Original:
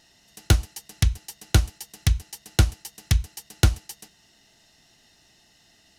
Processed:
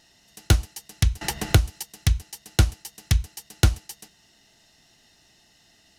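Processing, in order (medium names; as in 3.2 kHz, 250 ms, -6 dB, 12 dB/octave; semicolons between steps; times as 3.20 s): 1.21–1.83 s: three bands compressed up and down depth 100%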